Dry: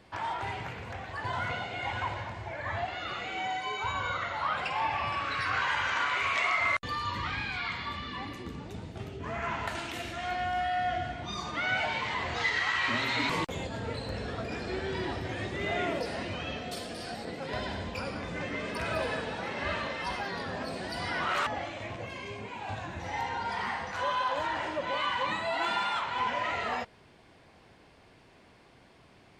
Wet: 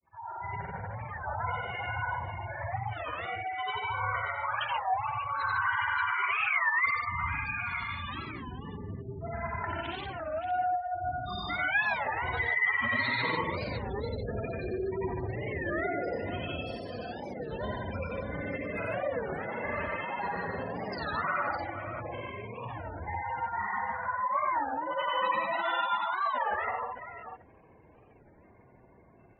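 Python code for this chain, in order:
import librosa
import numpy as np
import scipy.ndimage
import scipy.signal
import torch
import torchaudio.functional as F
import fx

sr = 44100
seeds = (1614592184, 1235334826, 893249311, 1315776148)

p1 = fx.fade_in_head(x, sr, length_s=0.62)
p2 = fx.spec_gate(p1, sr, threshold_db=-10, keep='strong')
p3 = fx.granulator(p2, sr, seeds[0], grain_ms=100.0, per_s=20.0, spray_ms=100.0, spread_st=0)
p4 = p3 + fx.echo_multitap(p3, sr, ms=(89, 91, 148, 581), db=(-4.5, -5.0, -4.0, -8.5), dry=0)
y = fx.record_warp(p4, sr, rpm=33.33, depth_cents=250.0)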